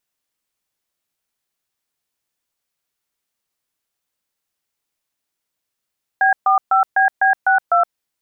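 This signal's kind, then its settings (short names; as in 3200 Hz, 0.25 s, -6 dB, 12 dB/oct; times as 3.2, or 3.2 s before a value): DTMF "B45BB62", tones 0.119 s, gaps 0.132 s, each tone -13.5 dBFS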